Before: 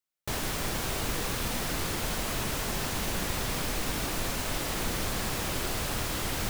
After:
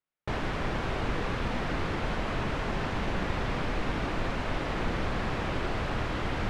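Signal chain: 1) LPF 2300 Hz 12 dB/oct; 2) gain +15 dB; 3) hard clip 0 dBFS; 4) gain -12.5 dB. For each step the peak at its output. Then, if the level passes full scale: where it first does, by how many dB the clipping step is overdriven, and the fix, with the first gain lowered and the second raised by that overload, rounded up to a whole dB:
-19.0, -4.0, -4.0, -16.5 dBFS; no overload

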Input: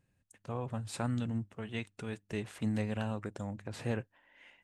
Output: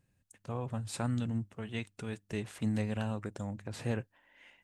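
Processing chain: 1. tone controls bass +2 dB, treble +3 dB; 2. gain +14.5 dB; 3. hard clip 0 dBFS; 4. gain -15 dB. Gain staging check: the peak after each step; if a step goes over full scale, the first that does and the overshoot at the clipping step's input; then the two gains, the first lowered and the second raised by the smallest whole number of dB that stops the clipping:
-19.0, -4.5, -4.5, -19.5 dBFS; no overload

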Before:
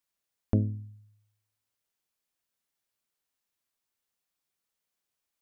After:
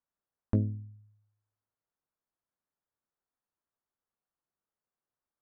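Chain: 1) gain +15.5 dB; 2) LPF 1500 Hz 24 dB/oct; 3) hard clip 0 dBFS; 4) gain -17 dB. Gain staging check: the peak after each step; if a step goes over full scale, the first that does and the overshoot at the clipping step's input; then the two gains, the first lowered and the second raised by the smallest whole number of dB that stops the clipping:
+3.5, +3.5, 0.0, -17.0 dBFS; step 1, 3.5 dB; step 1 +11.5 dB, step 4 -13 dB

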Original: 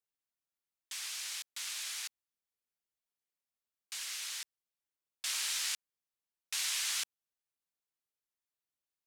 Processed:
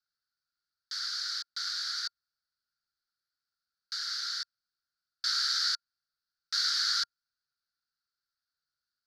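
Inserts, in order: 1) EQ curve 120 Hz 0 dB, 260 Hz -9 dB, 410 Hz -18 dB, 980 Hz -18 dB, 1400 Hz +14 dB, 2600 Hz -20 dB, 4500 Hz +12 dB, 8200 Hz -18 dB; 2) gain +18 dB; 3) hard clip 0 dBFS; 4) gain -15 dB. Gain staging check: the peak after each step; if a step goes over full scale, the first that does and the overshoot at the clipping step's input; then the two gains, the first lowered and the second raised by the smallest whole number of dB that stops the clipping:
-19.5, -1.5, -1.5, -16.5 dBFS; no overload

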